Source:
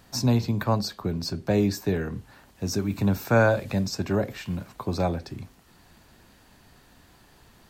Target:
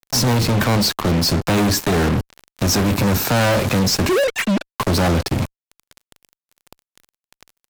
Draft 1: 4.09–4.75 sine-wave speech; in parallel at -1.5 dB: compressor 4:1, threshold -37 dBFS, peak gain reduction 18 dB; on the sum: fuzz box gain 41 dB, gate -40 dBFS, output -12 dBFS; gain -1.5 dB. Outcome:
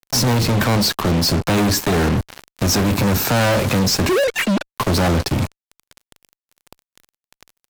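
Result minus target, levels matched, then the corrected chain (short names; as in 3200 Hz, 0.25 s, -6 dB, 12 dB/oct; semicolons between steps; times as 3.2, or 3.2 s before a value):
compressor: peak gain reduction -8 dB
4.09–4.75 sine-wave speech; in parallel at -1.5 dB: compressor 4:1, threshold -47.5 dBFS, peak gain reduction 26 dB; on the sum: fuzz box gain 41 dB, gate -40 dBFS, output -12 dBFS; gain -1.5 dB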